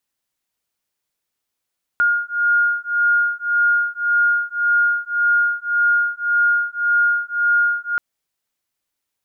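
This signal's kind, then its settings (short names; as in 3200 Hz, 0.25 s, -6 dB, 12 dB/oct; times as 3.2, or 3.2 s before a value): beating tones 1420 Hz, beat 1.8 Hz, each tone -18 dBFS 5.98 s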